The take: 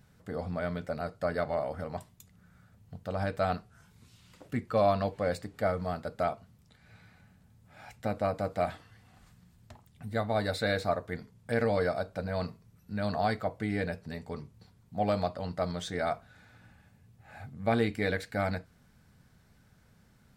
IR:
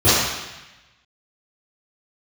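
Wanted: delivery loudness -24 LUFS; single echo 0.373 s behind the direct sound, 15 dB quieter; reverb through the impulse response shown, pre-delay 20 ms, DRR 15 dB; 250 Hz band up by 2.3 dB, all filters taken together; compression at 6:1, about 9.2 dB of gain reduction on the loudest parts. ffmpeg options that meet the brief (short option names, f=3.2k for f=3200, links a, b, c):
-filter_complex "[0:a]equalizer=f=250:t=o:g=3,acompressor=threshold=-31dB:ratio=6,aecho=1:1:373:0.178,asplit=2[a][b];[1:a]atrim=start_sample=2205,adelay=20[c];[b][c]afir=irnorm=-1:irlink=0,volume=-39.5dB[d];[a][d]amix=inputs=2:normalize=0,volume=13.5dB"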